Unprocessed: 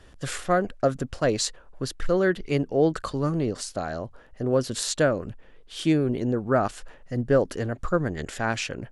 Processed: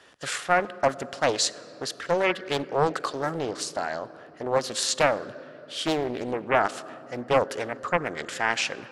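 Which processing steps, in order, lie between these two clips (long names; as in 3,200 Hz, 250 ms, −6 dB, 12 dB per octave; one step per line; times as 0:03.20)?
meter weighting curve A
on a send at −16 dB: convolution reverb RT60 3.6 s, pre-delay 4 ms
on the sum: highs frequency-modulated by the lows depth 0.65 ms
level +3 dB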